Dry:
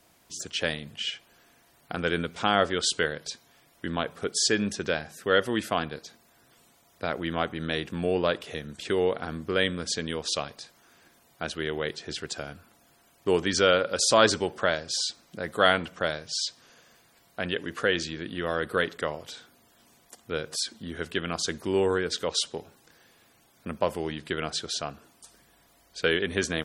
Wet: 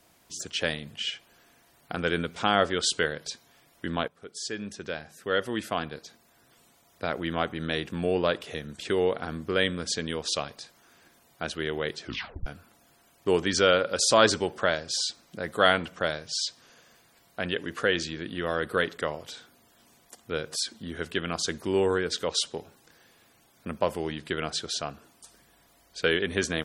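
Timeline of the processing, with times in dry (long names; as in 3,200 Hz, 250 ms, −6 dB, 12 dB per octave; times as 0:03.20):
0:04.08–0:07.39: fade in equal-power, from −17.5 dB
0:12.01: tape stop 0.45 s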